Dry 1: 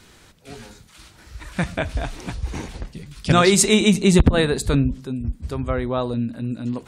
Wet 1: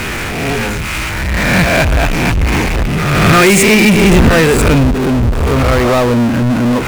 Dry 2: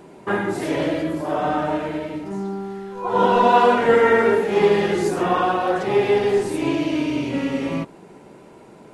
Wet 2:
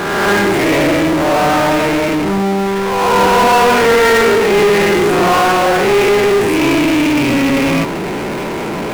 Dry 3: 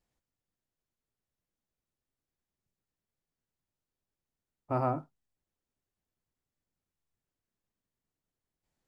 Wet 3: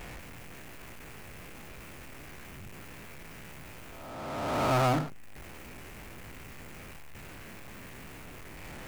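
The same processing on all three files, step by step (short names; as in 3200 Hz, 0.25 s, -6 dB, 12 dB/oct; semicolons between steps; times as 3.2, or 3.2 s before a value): spectral swells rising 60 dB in 0.72 s; resonant high shelf 3100 Hz -7.5 dB, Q 3; power-law curve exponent 0.35; gain -2.5 dB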